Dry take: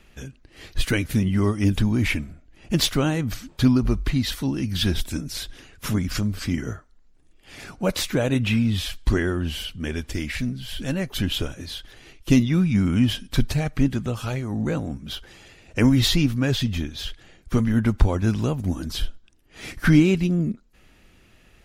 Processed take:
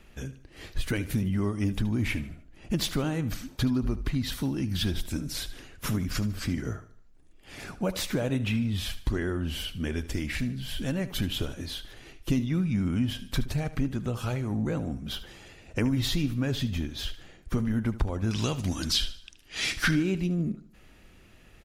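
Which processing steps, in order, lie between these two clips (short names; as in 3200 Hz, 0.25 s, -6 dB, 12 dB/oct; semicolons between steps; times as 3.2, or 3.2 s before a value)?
bell 4300 Hz -3 dB 2.9 oct, from 18.31 s +14.5 dB, from 19.91 s -2 dB; compressor 2.5:1, threshold -27 dBFS, peak gain reduction 12.5 dB; feedback echo 75 ms, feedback 41%, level -15.5 dB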